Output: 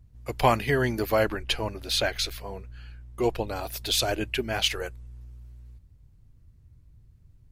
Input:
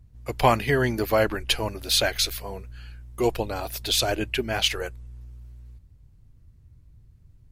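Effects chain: 1.34–3.48 s: treble shelf 6.5 kHz -9 dB; trim -2 dB

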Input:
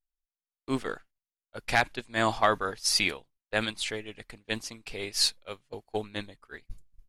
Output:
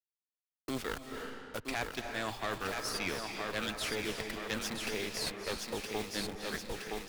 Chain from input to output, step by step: send-on-delta sampling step -43.5 dBFS; expander -44 dBFS; reverse; compression, threshold -37 dBFS, peak gain reduction 18.5 dB; reverse; one-sided clip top -46 dBFS; thinning echo 968 ms, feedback 43%, high-pass 170 Hz, level -5.5 dB; on a send at -8 dB: reverberation RT60 1.2 s, pre-delay 199 ms; on the sum: three bands compressed up and down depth 70%; trim +5.5 dB

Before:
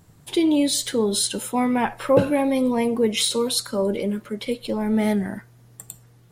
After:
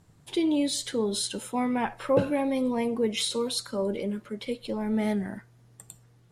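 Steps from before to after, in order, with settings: Bessel low-pass 9.4 kHz, order 2; trim -6 dB

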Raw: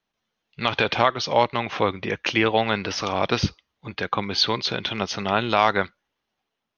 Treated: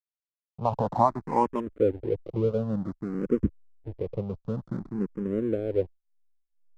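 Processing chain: elliptic low-pass 1 kHz, stop band 40 dB, from 1.59 s 510 Hz; hysteresis with a dead band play -34 dBFS; barber-pole phaser +0.54 Hz; trim +3.5 dB

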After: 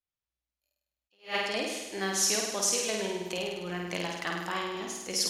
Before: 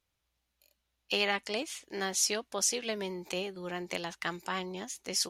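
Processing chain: gate -56 dBFS, range -17 dB; flutter echo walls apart 8.8 m, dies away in 1.1 s; attacks held to a fixed rise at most 240 dB/s

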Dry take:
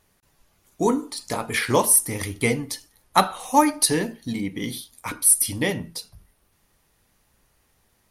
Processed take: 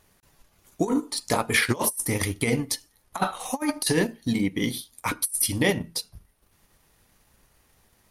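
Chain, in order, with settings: compressor with a negative ratio -22 dBFS, ratio -0.5; transient shaper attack +1 dB, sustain -7 dB

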